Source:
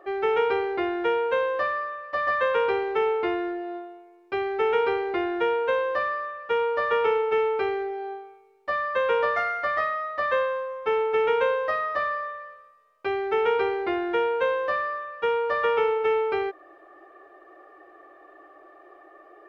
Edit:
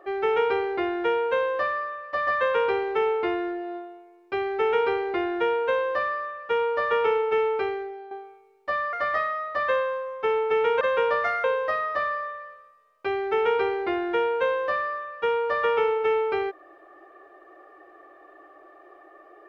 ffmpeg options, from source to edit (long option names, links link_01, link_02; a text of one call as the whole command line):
ffmpeg -i in.wav -filter_complex "[0:a]asplit=5[link_01][link_02][link_03][link_04][link_05];[link_01]atrim=end=8.11,asetpts=PTS-STARTPTS,afade=type=out:start_time=7.55:duration=0.56:silence=0.298538[link_06];[link_02]atrim=start=8.11:end=8.932,asetpts=PTS-STARTPTS,afade=type=in:duration=0.004:curve=hsin:silence=0.298538[link_07];[link_03]atrim=start=9.558:end=11.442[link_08];[link_04]atrim=start=8.928:end=9.562[link_09];[link_05]atrim=start=11.438[link_10];[link_06][link_07]concat=n=2:v=0:a=1[link_11];[link_11][link_08]acrossfade=duration=0.004:curve1=hsin:curve2=hsin[link_12];[link_12][link_09]acrossfade=duration=0.004:curve1=hsin:curve2=hsin[link_13];[link_13][link_10]acrossfade=duration=0.004:curve1=hsin:curve2=hsin" out.wav